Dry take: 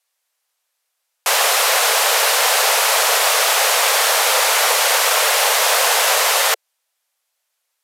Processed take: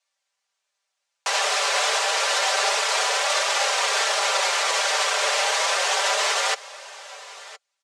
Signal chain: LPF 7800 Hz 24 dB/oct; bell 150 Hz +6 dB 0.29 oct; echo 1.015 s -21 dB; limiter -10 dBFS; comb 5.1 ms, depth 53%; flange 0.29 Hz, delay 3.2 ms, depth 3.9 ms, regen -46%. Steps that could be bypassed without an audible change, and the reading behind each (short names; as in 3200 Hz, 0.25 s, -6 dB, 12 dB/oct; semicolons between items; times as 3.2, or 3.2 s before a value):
bell 150 Hz: input band starts at 340 Hz